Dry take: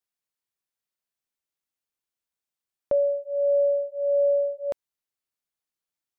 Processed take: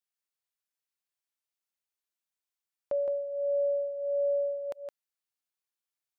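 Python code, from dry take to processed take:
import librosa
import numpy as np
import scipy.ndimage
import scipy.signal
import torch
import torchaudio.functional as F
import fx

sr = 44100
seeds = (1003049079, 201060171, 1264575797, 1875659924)

p1 = fx.low_shelf(x, sr, hz=450.0, db=-11.0)
p2 = p1 + fx.echo_single(p1, sr, ms=166, db=-5.0, dry=0)
y = F.gain(torch.from_numpy(p2), -3.5).numpy()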